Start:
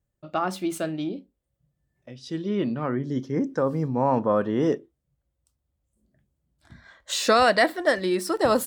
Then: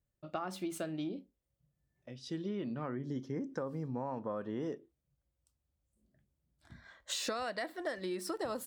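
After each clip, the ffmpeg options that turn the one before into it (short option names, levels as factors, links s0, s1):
-af "acompressor=threshold=0.0398:ratio=12,volume=0.501"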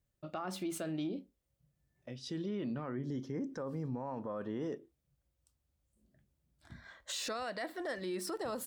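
-af "alimiter=level_in=2.82:limit=0.0631:level=0:latency=1:release=19,volume=0.355,volume=1.33"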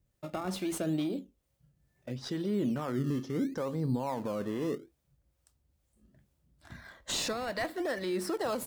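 -filter_complex "[0:a]acrossover=split=490[s0][s1];[s0]aeval=exprs='val(0)*(1-0.5/2+0.5/2*cos(2*PI*2.3*n/s))':c=same[s2];[s1]aeval=exprs='val(0)*(1-0.5/2-0.5/2*cos(2*PI*2.3*n/s))':c=same[s3];[s2][s3]amix=inputs=2:normalize=0,asplit=2[s4][s5];[s5]acrusher=samples=20:mix=1:aa=0.000001:lfo=1:lforange=20:lforate=0.71,volume=0.316[s6];[s4][s6]amix=inputs=2:normalize=0,volume=2.11"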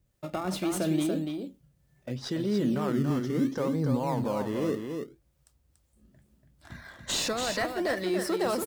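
-af "aecho=1:1:286:0.531,volume=1.5"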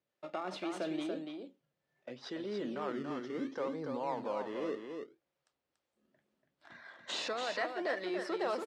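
-af "highpass=400,lowpass=3800,volume=0.596"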